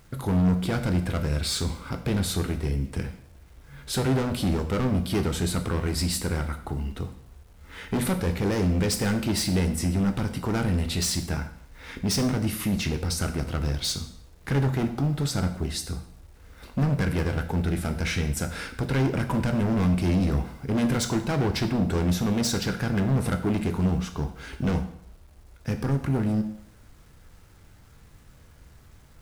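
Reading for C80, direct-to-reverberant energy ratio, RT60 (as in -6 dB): 13.5 dB, 7.0 dB, 0.65 s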